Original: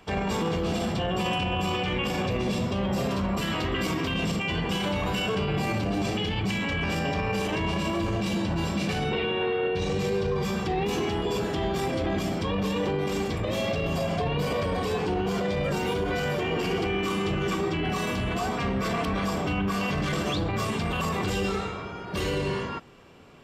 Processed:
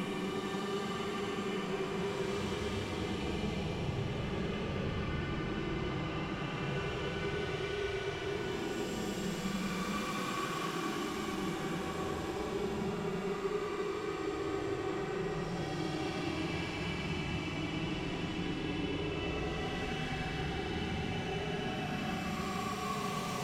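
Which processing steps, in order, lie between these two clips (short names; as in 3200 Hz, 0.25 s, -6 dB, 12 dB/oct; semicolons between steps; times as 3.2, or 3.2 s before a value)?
soft clip -31.5 dBFS, distortion -9 dB; Paulstretch 30×, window 0.05 s, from 17.19; on a send: split-band echo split 560 Hz, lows 91 ms, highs 0.452 s, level -7 dB; on the sum: gain -3.5 dB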